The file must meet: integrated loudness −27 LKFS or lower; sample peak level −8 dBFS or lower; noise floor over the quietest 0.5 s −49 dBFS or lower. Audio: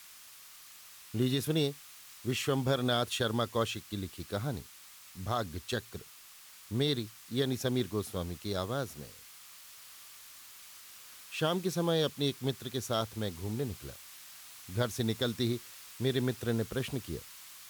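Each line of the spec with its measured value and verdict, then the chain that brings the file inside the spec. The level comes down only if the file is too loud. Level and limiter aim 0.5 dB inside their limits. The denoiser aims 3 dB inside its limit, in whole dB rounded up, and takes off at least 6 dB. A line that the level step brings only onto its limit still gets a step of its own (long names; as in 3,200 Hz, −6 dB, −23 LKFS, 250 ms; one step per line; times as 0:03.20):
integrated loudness −33.5 LKFS: in spec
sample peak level −17.5 dBFS: in spec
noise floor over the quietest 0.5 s −54 dBFS: in spec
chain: no processing needed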